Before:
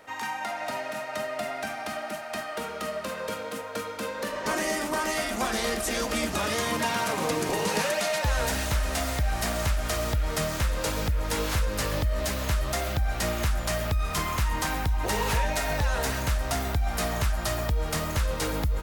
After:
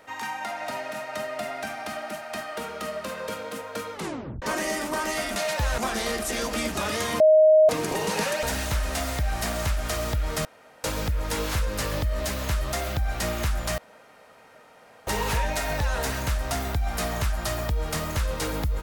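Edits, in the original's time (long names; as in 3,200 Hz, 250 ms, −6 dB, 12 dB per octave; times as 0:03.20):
0:03.93: tape stop 0.49 s
0:06.78–0:07.27: beep over 624 Hz −12 dBFS
0:08.01–0:08.43: move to 0:05.36
0:10.45–0:10.84: fill with room tone
0:13.78–0:15.07: fill with room tone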